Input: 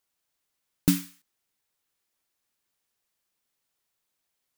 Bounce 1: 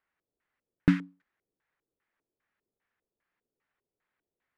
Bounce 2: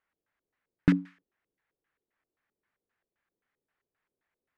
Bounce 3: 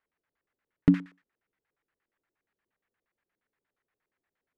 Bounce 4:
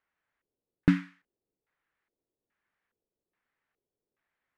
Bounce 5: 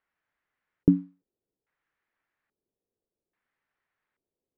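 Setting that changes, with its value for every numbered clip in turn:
LFO low-pass, rate: 2.5, 3.8, 8.5, 1.2, 0.6 Hz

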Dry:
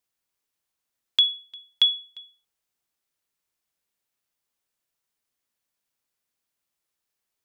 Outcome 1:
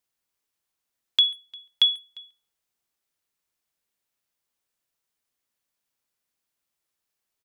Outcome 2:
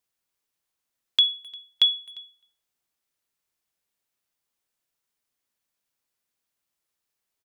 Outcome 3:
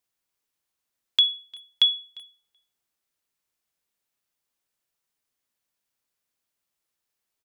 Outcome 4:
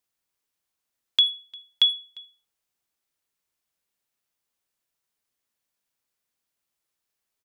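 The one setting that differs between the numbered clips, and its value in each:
speakerphone echo, time: 140, 260, 380, 80 ms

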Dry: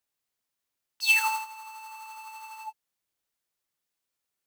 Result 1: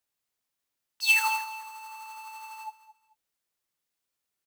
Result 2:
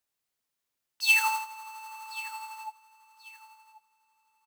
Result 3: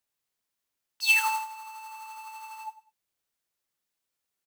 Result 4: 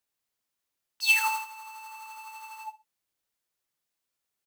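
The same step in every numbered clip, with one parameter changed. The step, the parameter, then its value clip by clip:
feedback echo, time: 218, 1085, 99, 61 ms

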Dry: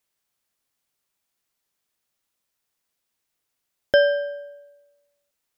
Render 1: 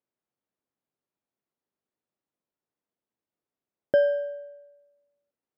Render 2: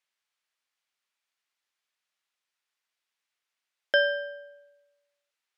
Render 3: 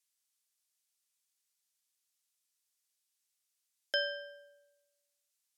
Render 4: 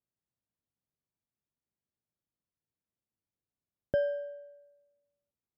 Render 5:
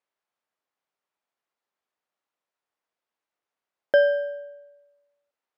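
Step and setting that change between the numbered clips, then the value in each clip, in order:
band-pass, frequency: 290, 2200, 7900, 110, 800 Hz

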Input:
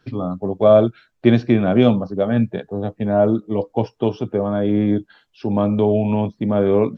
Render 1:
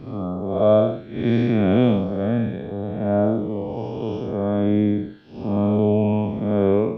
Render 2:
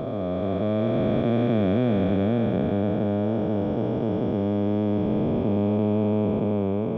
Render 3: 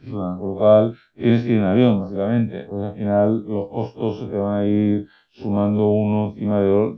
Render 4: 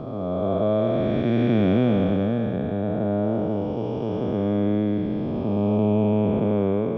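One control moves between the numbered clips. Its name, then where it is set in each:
time blur, width: 219, 1750, 81, 700 ms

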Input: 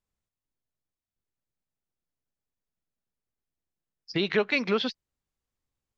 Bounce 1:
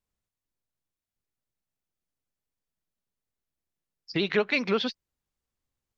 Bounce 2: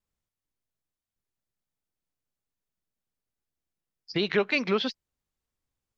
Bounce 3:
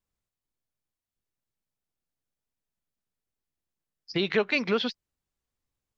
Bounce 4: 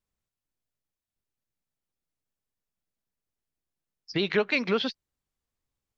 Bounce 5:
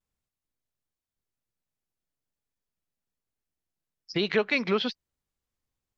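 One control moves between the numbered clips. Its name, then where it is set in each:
vibrato, rate: 15, 2.9, 5.1, 9.1, 1 Hz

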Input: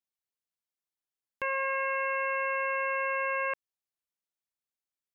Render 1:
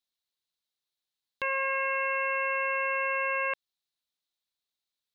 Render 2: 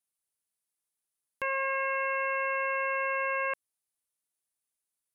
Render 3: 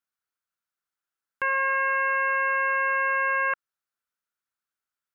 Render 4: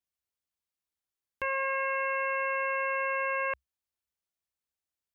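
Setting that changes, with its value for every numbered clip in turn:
bell, frequency: 3900, 10000, 1400, 65 Hz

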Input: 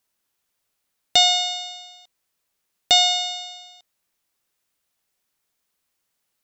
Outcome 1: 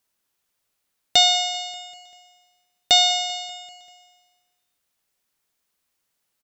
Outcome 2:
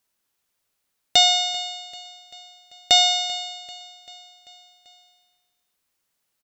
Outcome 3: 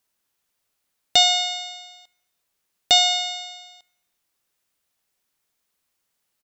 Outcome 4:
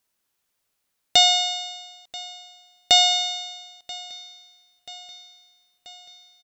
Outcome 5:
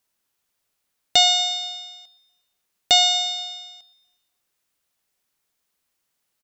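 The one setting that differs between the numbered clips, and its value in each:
feedback echo, time: 195, 390, 73, 984, 119 ms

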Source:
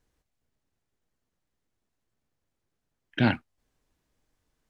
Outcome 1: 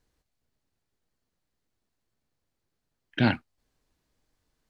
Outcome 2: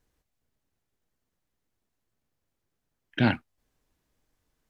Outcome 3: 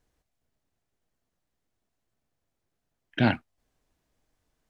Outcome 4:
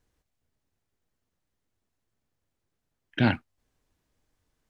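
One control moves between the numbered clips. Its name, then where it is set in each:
bell, frequency: 4400, 13000, 680, 91 Hz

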